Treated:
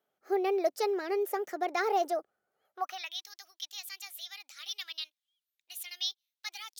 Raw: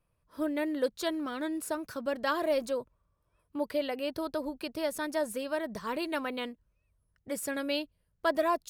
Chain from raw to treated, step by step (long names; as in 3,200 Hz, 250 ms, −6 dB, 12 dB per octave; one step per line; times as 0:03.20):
speed change +28%
high-pass filter sweep 420 Hz → 3,500 Hz, 0:02.62–0:03.17
level −2.5 dB